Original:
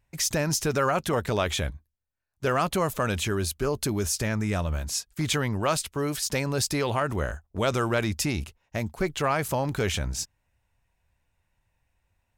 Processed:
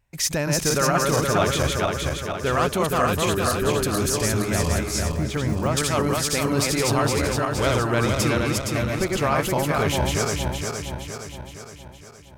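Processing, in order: regenerating reverse delay 0.233 s, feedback 73%, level -1.5 dB; 5.11–5.77 de-esser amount 100%; gain +1.5 dB

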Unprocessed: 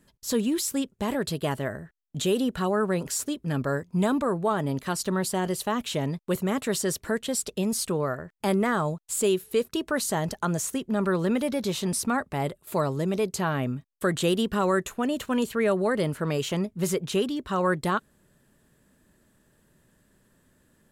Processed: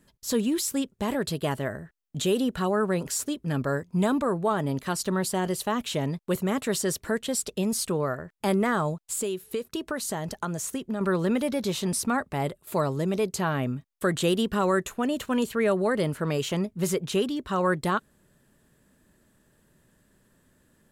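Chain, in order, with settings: 9–11.01 compressor, threshold -27 dBFS, peak gain reduction 8 dB

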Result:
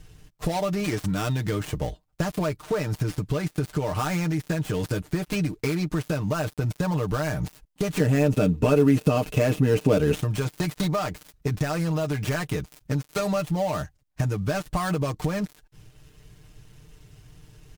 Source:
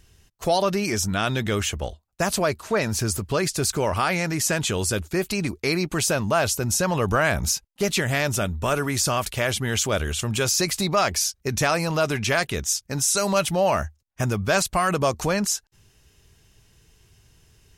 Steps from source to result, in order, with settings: switching dead time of 0.12 ms; low shelf 400 Hz +8 dB; comb 6.6 ms, depth 73%; compressor, threshold -23 dBFS, peak gain reduction 12.5 dB; 8–10.15 small resonant body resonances 250/440/2600 Hz, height 12 dB, ringing for 25 ms

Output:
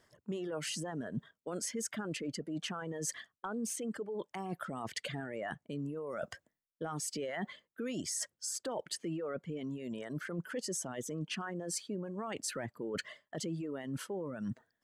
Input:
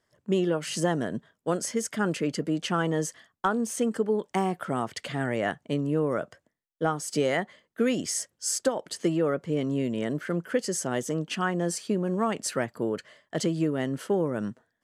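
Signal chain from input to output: limiter -23.5 dBFS, peak gain reduction 11 dB; reverse; compressor 6:1, threshold -42 dBFS, peak gain reduction 14 dB; reverse; reverb removal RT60 1.8 s; gain +7 dB

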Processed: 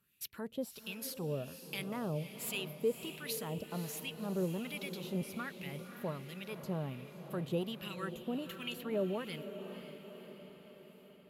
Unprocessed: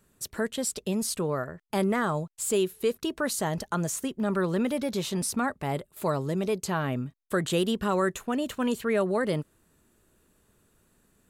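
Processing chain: EQ curve 140 Hz 0 dB, 760 Hz -26 dB, 1800 Hz -24 dB, 2600 Hz -10 dB, 5000 Hz -9 dB, 8600 Hz -12 dB, 12000 Hz +10 dB; in parallel at -9 dB: soft clip -35.5 dBFS, distortion -11 dB; on the sum: LFO band-pass sine 1.3 Hz 550–2400 Hz; diffused feedback echo 0.535 s, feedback 58%, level -10 dB; gain +13 dB

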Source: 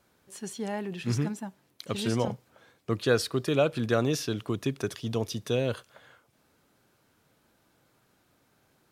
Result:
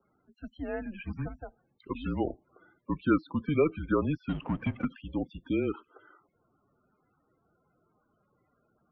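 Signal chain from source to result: loudest bins only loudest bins 32; 4.29–4.85 power-law curve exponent 0.7; mistuned SSB -160 Hz 280–2900 Hz

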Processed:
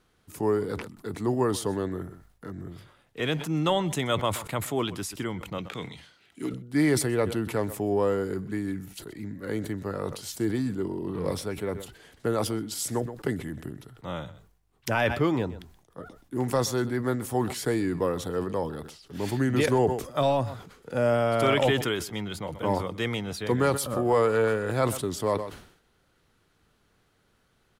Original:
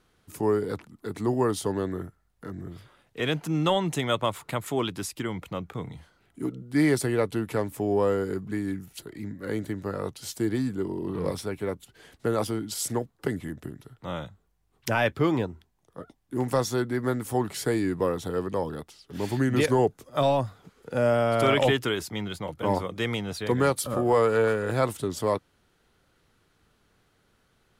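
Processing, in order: 5.58–6.54 weighting filter D; echo 0.126 s -21.5 dB; sustainer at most 91 dB/s; gain -1 dB

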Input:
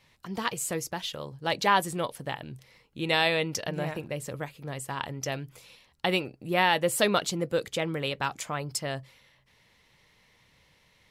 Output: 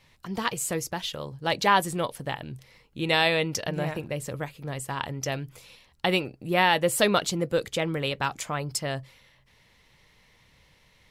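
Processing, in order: low shelf 61 Hz +8.5 dB; gain +2 dB

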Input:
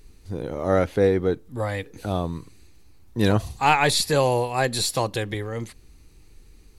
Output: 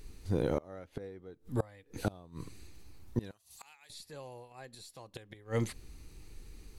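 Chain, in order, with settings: flipped gate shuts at -19 dBFS, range -27 dB; 3.31–3.9 pre-emphasis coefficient 0.97

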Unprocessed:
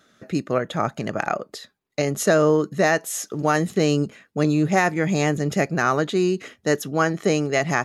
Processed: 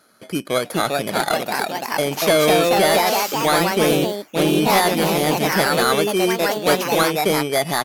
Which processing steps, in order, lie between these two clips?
FFT order left unsorted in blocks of 16 samples; downsampling 32000 Hz; echoes that change speed 0.452 s, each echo +2 st, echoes 3; overdrive pedal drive 12 dB, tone 5300 Hz, clips at -5 dBFS

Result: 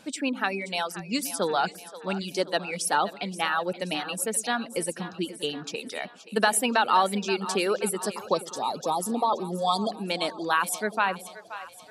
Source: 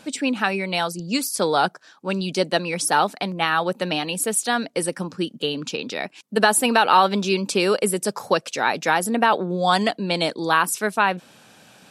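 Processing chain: spectral delete 8.25–9.92, 1300–3200 Hz; reverb removal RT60 1.4 s; split-band echo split 470 Hz, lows 0.101 s, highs 0.527 s, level -14 dB; gain -5 dB

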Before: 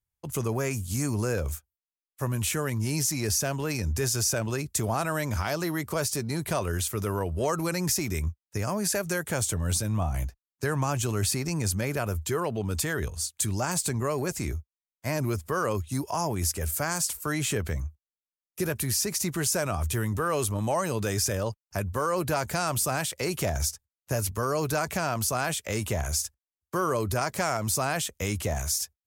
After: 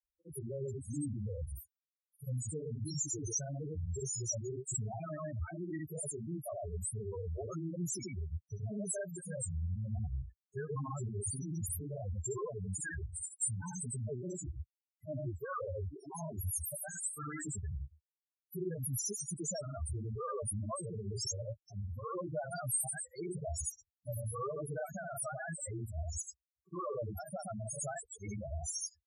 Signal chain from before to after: grains 0.127 s, grains 21/s, spray 83 ms, pitch spread up and down by 0 st; pre-emphasis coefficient 0.8; loudest bins only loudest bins 4; gain +8 dB

